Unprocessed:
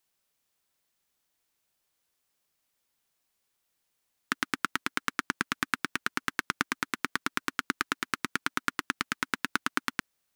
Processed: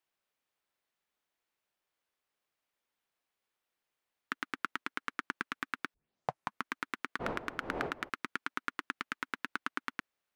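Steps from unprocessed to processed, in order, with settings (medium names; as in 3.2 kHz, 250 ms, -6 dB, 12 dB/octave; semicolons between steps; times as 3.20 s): 7.19–8.08 s: wind noise 590 Hz -37 dBFS; tone controls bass -7 dB, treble -11 dB; peak limiter -13.5 dBFS, peak gain reduction 5.5 dB; 5.94 s: tape start 0.74 s; trim -3 dB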